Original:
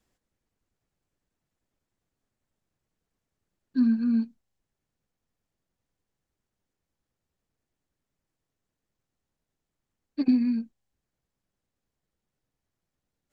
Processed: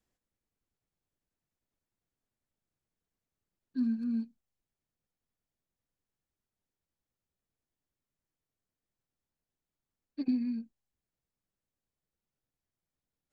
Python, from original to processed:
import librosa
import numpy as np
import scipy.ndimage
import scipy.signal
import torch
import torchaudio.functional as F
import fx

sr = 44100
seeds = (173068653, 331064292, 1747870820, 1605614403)

y = fx.median_filter(x, sr, points=9, at=(3.78, 4.21), fade=0.02)
y = fx.dynamic_eq(y, sr, hz=1200.0, q=1.0, threshold_db=-45.0, ratio=4.0, max_db=-5)
y = F.gain(torch.from_numpy(y), -8.0).numpy()